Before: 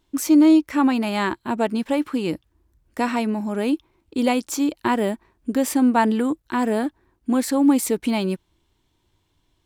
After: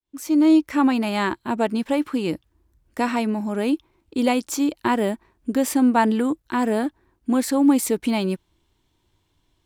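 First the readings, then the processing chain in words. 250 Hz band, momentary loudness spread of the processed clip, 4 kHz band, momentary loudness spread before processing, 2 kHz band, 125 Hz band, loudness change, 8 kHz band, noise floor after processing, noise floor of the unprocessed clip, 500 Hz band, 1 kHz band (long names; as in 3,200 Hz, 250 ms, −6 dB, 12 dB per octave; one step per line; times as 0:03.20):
−0.5 dB, 10 LU, 0.0 dB, 11 LU, 0.0 dB, 0.0 dB, −0.5 dB, −1.0 dB, −69 dBFS, −69 dBFS, 0.0 dB, 0.0 dB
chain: fade in at the beginning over 0.58 s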